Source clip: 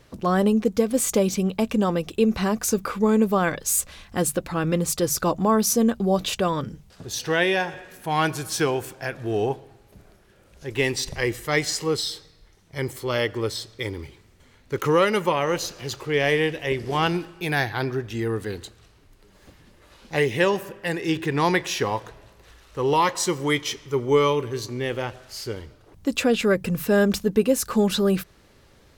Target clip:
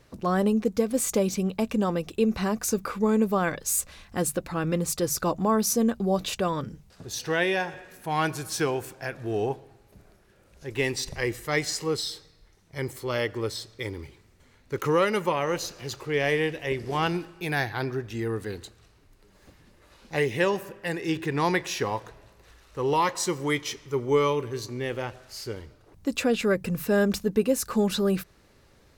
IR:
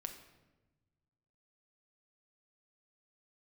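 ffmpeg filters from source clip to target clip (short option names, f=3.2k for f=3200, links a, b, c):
-af "equalizer=f=3.2k:w=6:g=-3.5,volume=-3.5dB"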